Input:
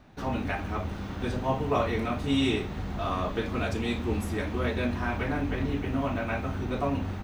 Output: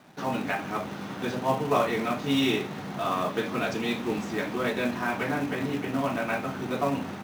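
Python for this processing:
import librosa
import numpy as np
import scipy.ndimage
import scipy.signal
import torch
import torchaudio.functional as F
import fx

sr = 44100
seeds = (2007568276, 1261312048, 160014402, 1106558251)

p1 = scipy.signal.sosfilt(scipy.signal.ellip(3, 1.0, 40, [140.0, 6600.0], 'bandpass', fs=sr, output='sos'), x)
p2 = fx.low_shelf(p1, sr, hz=340.0, db=-3.0)
p3 = fx.quant_companded(p2, sr, bits=4)
y = p2 + F.gain(torch.from_numpy(p3), -6.0).numpy()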